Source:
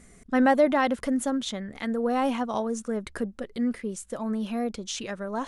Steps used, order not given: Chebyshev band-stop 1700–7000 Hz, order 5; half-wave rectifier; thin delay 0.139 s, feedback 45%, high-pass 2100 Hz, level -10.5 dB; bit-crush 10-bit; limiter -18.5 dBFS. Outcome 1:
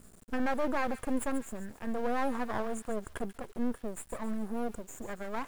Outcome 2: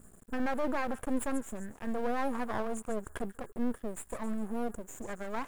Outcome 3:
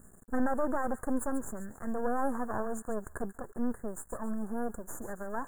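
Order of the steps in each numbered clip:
Chebyshev band-stop > limiter > half-wave rectifier > thin delay > bit-crush; thin delay > limiter > bit-crush > Chebyshev band-stop > half-wave rectifier; half-wave rectifier > limiter > thin delay > bit-crush > Chebyshev band-stop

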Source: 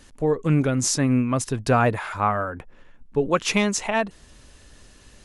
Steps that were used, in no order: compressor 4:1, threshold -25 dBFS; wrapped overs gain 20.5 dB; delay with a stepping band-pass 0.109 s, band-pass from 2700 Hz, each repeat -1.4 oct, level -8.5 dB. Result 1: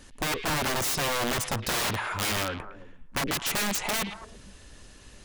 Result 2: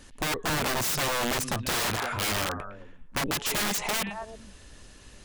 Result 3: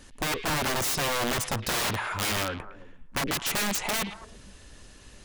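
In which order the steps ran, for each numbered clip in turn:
wrapped overs > delay with a stepping band-pass > compressor; delay with a stepping band-pass > wrapped overs > compressor; wrapped overs > compressor > delay with a stepping band-pass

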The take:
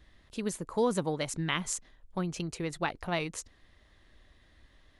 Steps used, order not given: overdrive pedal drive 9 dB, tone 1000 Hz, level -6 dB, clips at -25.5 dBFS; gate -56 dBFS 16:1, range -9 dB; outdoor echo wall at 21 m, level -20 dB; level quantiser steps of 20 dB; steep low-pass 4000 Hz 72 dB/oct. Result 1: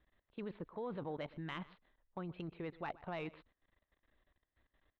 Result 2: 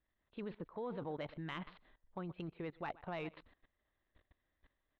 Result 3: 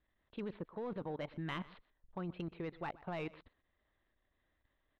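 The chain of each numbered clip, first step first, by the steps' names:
steep low-pass > level quantiser > overdrive pedal > outdoor echo > gate; gate > outdoor echo > level quantiser > steep low-pass > overdrive pedal; gate > steep low-pass > overdrive pedal > level quantiser > outdoor echo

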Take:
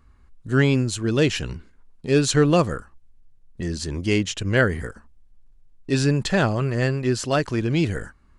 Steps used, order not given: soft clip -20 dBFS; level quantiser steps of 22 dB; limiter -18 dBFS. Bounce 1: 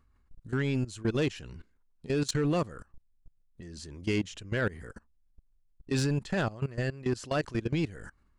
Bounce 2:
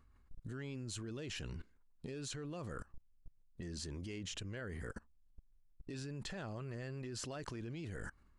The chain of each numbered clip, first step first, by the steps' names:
level quantiser > limiter > soft clip; limiter > level quantiser > soft clip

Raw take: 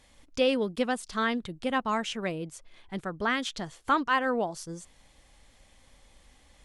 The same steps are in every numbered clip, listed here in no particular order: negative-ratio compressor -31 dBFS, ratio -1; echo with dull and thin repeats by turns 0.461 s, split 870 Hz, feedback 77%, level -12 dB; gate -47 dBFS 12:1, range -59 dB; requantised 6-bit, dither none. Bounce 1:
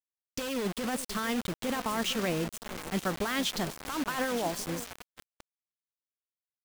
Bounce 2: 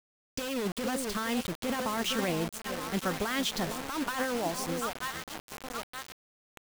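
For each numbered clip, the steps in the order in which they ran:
negative-ratio compressor > echo with dull and thin repeats by turns > requantised > gate; gate > echo with dull and thin repeats by turns > negative-ratio compressor > requantised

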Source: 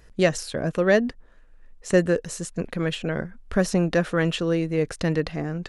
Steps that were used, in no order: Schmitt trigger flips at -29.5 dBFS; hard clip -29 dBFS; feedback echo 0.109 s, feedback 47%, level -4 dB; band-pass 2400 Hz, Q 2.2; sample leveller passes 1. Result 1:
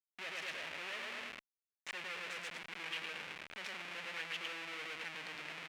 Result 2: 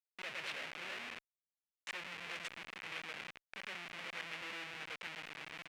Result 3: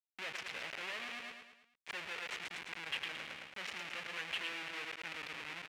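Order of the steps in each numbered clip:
sample leveller > feedback echo > hard clip > Schmitt trigger > band-pass; sample leveller > hard clip > feedback echo > Schmitt trigger > band-pass; Schmitt trigger > sample leveller > feedback echo > hard clip > band-pass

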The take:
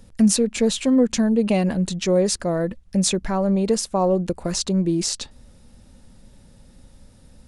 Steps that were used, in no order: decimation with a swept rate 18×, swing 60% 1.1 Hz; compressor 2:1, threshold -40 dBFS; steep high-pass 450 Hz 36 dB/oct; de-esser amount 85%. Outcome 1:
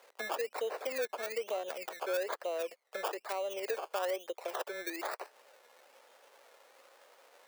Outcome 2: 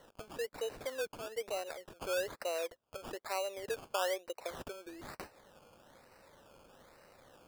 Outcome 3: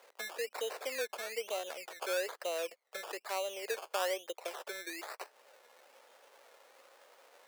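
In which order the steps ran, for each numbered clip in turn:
decimation with a swept rate > de-esser > steep high-pass > compressor; de-esser > compressor > steep high-pass > decimation with a swept rate; compressor > de-esser > decimation with a swept rate > steep high-pass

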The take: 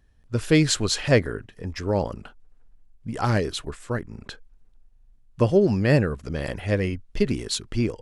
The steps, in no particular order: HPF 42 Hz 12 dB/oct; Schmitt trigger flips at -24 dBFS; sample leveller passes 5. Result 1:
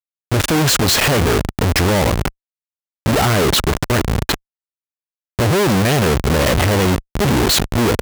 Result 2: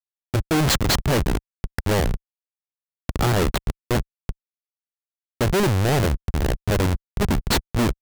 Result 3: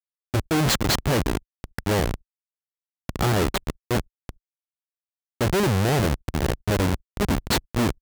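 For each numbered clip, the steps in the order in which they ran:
sample leveller > Schmitt trigger > HPF; Schmitt trigger > HPF > sample leveller; Schmitt trigger > sample leveller > HPF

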